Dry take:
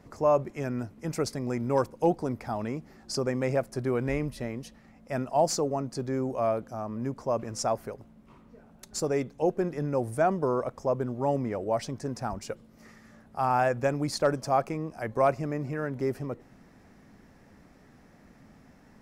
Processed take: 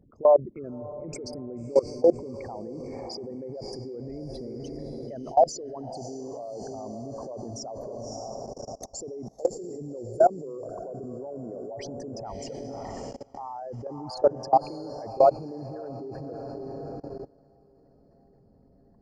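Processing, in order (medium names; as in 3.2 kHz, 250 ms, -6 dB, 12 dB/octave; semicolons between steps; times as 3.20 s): resonances exaggerated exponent 3; echo that smears into a reverb 590 ms, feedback 48%, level -9 dB; level held to a coarse grid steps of 22 dB; trim +7 dB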